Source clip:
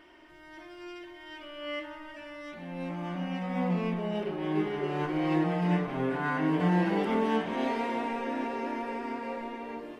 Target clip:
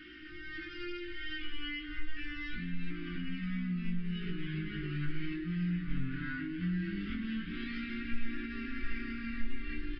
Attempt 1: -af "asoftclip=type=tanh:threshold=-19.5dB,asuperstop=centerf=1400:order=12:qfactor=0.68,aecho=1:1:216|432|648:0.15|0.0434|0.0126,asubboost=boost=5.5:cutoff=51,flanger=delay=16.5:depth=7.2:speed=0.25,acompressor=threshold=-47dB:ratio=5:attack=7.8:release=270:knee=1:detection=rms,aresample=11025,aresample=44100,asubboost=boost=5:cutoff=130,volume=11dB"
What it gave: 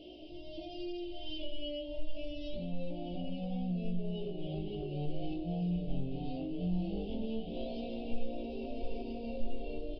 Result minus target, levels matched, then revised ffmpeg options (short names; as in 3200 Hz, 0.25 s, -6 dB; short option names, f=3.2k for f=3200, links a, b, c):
500 Hz band +11.5 dB; soft clip: distortion +12 dB
-af "asoftclip=type=tanh:threshold=-12.5dB,asuperstop=centerf=680:order=12:qfactor=0.68,aecho=1:1:216|432|648:0.15|0.0434|0.0126,asubboost=boost=5.5:cutoff=51,flanger=delay=16.5:depth=7.2:speed=0.25,acompressor=threshold=-47dB:ratio=5:attack=7.8:release=270:knee=1:detection=rms,aresample=11025,aresample=44100,asubboost=boost=5:cutoff=130,volume=11dB"